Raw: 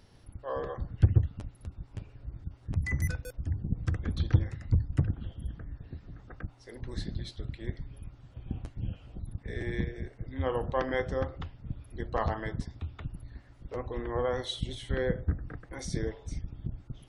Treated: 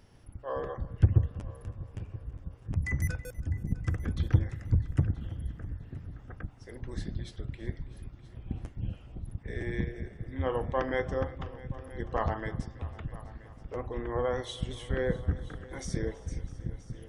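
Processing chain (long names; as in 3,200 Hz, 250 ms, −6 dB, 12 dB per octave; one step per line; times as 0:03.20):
parametric band 4,100 Hz −9 dB 0.34 octaves
echo machine with several playback heads 326 ms, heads all three, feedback 40%, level −21 dB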